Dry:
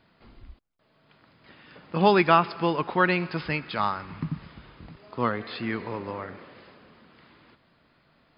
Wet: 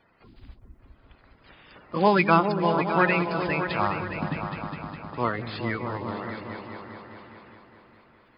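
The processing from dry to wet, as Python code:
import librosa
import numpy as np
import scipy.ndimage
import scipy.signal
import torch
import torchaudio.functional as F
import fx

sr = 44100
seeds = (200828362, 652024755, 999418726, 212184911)

y = fx.spec_quant(x, sr, step_db=30)
y = fx.echo_opening(y, sr, ms=205, hz=200, octaves=2, feedback_pct=70, wet_db=-3)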